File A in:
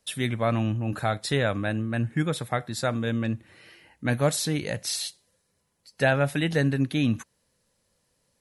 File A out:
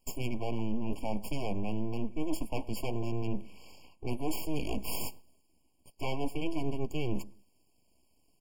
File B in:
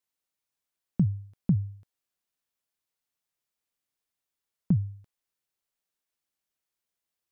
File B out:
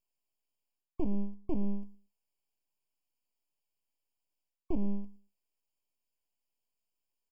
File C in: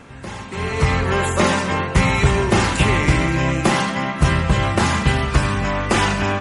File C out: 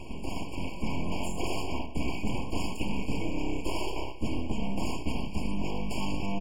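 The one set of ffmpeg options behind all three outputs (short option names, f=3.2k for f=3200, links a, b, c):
-filter_complex "[0:a]equalizer=f=100:t=o:w=0.33:g=11,equalizer=f=160:t=o:w=0.33:g=10,equalizer=f=400:t=o:w=0.33:g=-12,equalizer=f=1.25k:t=o:w=0.33:g=-10,areverse,acompressor=threshold=-29dB:ratio=5,areverse,aeval=exprs='abs(val(0))':c=same,asplit=2[a][b];[b]adelay=114,lowpass=f=850:p=1,volume=-19dB,asplit=2[c][d];[d]adelay=114,lowpass=f=850:p=1,volume=0.23[e];[a][c][e]amix=inputs=3:normalize=0,afftfilt=real='re*eq(mod(floor(b*sr/1024/1100),2),0)':imag='im*eq(mod(floor(b*sr/1024/1100),2),0)':win_size=1024:overlap=0.75,volume=2dB"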